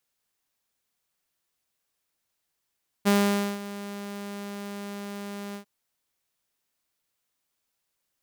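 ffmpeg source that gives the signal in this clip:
-f lavfi -i "aevalsrc='0.178*(2*mod(202*t,1)-1)':d=2.596:s=44100,afade=t=in:d=0.026,afade=t=out:st=0.026:d=0.509:silence=0.141,afade=t=out:st=2.5:d=0.096"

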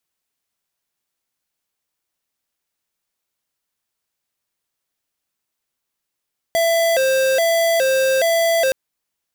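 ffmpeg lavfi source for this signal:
-f lavfi -i "aevalsrc='0.15*(2*lt(mod((598*t+69/1.2*(0.5-abs(mod(1.2*t,1)-0.5))),1),0.5)-1)':d=2.17:s=44100"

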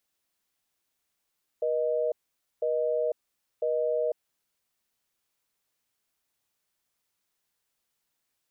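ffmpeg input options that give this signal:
-f lavfi -i "aevalsrc='0.0447*(sin(2*PI*480*t)+sin(2*PI*620*t))*clip(min(mod(t,1),0.5-mod(t,1))/0.005,0,1)':d=2.68:s=44100"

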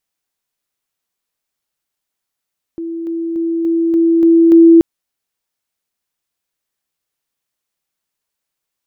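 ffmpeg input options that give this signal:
-f lavfi -i "aevalsrc='pow(10,(-20.5+3*floor(t/0.29))/20)*sin(2*PI*332*t)':d=2.03:s=44100"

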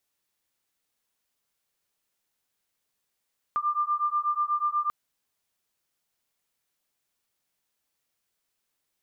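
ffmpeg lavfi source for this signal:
-f lavfi -i "aevalsrc='0.0447*(sin(2*PI*1190*t)+sin(2*PI*1198.2*t))':d=1.34:s=44100"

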